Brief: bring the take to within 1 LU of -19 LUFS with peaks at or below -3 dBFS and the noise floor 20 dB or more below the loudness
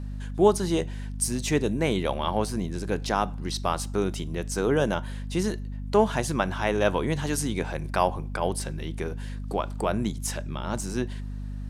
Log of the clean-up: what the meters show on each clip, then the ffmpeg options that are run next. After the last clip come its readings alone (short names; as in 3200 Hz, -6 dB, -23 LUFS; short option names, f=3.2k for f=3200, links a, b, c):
hum 50 Hz; harmonics up to 250 Hz; hum level -31 dBFS; loudness -27.5 LUFS; peak -7.0 dBFS; loudness target -19.0 LUFS
-> -af "bandreject=f=50:t=h:w=4,bandreject=f=100:t=h:w=4,bandreject=f=150:t=h:w=4,bandreject=f=200:t=h:w=4,bandreject=f=250:t=h:w=4"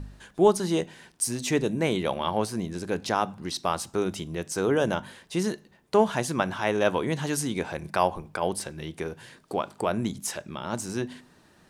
hum none; loudness -28.0 LUFS; peak -7.5 dBFS; loudness target -19.0 LUFS
-> -af "volume=9dB,alimiter=limit=-3dB:level=0:latency=1"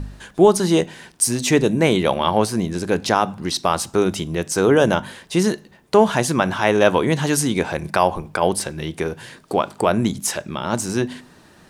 loudness -19.5 LUFS; peak -3.0 dBFS; noise floor -50 dBFS